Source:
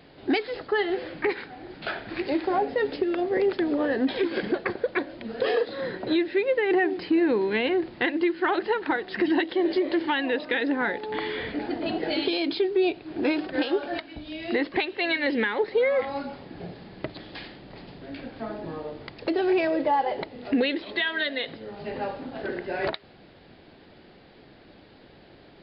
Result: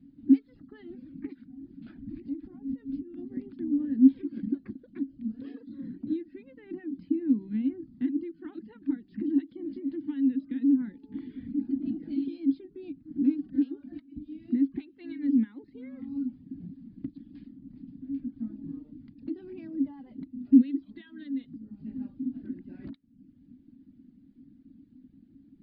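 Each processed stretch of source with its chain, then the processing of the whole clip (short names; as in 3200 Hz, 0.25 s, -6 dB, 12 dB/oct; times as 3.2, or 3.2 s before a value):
1.97–3.17 low shelf 100 Hz +11 dB + compressor 4:1, threshold -29 dBFS
whole clip: reverb removal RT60 0.68 s; EQ curve 150 Hz 0 dB, 270 Hz +15 dB, 400 Hz -22 dB, 640 Hz -30 dB, 1400 Hz -24 dB; gain -5.5 dB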